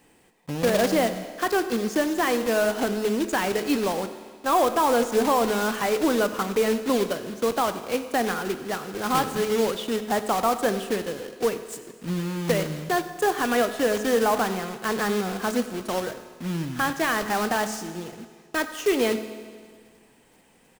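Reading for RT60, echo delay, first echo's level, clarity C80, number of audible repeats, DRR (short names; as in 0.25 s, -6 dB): 1.8 s, 95 ms, -19.0 dB, 11.5 dB, 1, 9.5 dB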